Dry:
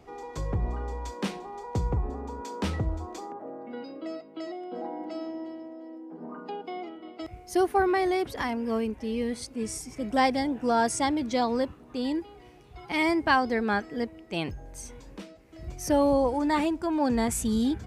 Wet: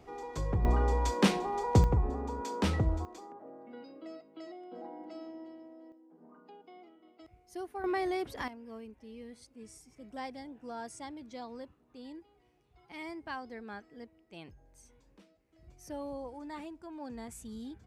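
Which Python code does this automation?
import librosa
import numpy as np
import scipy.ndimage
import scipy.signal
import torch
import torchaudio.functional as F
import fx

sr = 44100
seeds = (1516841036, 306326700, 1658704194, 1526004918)

y = fx.gain(x, sr, db=fx.steps((0.0, -2.0), (0.65, 6.0), (1.84, 0.0), (3.05, -9.5), (5.92, -17.0), (7.84, -7.0), (8.48, -18.0)))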